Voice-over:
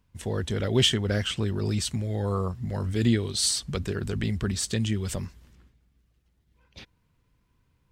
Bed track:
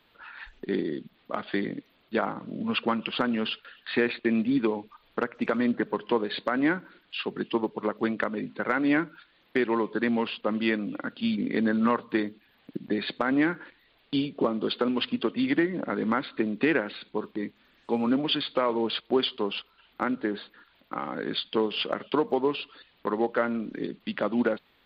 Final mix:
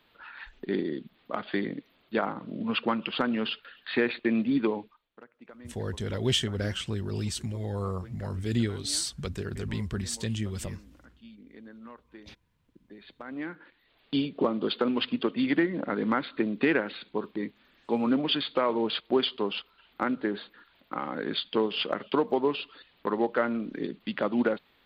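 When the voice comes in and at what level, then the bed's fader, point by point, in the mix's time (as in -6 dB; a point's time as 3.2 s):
5.50 s, -4.5 dB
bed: 4.82 s -1 dB
5.09 s -23 dB
12.85 s -23 dB
14.05 s -0.5 dB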